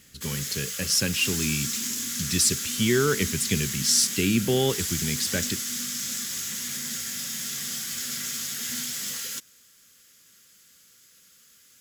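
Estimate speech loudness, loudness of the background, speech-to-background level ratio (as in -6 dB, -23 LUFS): -25.0 LUFS, -29.0 LUFS, 4.0 dB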